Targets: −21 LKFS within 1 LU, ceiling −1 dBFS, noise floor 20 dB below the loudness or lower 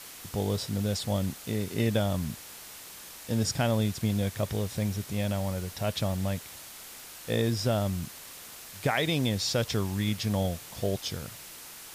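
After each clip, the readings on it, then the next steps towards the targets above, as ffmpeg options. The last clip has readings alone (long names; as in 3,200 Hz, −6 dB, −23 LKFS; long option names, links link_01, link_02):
background noise floor −46 dBFS; target noise floor −50 dBFS; integrated loudness −30.0 LKFS; sample peak −14.5 dBFS; target loudness −21.0 LKFS
→ -af "afftdn=noise_reduction=6:noise_floor=-46"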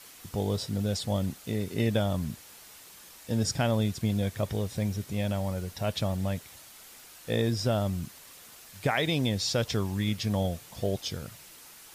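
background noise floor −51 dBFS; integrated loudness −30.0 LKFS; sample peak −14.5 dBFS; target loudness −21.0 LKFS
→ -af "volume=9dB"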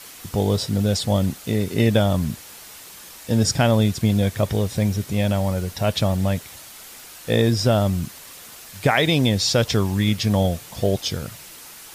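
integrated loudness −21.0 LKFS; sample peak −5.5 dBFS; background noise floor −42 dBFS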